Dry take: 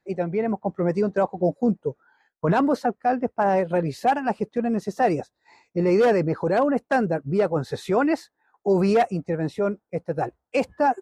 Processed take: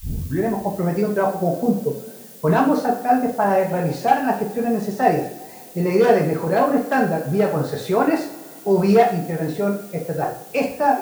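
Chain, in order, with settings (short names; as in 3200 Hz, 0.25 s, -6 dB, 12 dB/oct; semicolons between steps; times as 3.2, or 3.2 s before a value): tape start at the beginning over 0.46 s; added noise blue -47 dBFS; two-slope reverb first 0.48 s, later 2.7 s, from -21 dB, DRR -1 dB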